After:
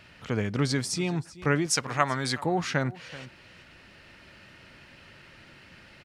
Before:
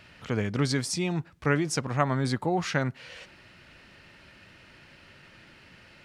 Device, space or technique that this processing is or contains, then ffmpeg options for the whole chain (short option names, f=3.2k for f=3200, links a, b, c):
ducked delay: -filter_complex "[0:a]asettb=1/sr,asplit=3[a][b][c];[a]atrim=end=1.664[d];[b]atrim=start=1.66:end=2.44,asetpts=PTS-STARTPTS,afade=t=in:d=0.004:c=qsin,afade=t=out:st=0.776:d=0.004:c=qsin,tiltshelf=f=710:g=-6.5[e];[c]atrim=start=2.436[f];[d][e]acrossfade=d=0.004:c1=hsin:c2=qsin[g];[g][f]acrossfade=d=0.004:c1=qsin:c2=hsin,asplit=3[h][i][j];[i]adelay=381,volume=-3dB[k];[j]apad=whole_len=283215[l];[k][l]sidechaincompress=threshold=-49dB:ratio=3:attack=49:release=836[m];[h][m]amix=inputs=2:normalize=0"